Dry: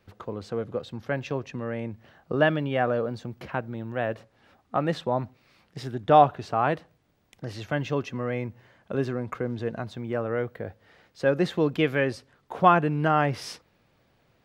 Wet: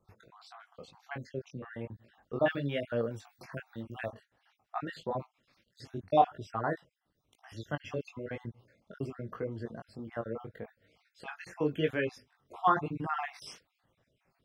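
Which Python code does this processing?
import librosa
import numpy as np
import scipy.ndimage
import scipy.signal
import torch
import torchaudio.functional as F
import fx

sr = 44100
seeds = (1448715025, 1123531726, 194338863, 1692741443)

y = fx.spec_dropout(x, sr, seeds[0], share_pct=53)
y = fx.high_shelf(y, sr, hz=3300.0, db=10.0, at=(2.49, 4.11))
y = fx.chorus_voices(y, sr, voices=2, hz=1.0, base_ms=20, depth_ms=3.0, mix_pct=40)
y = F.gain(torch.from_numpy(y), -3.5).numpy()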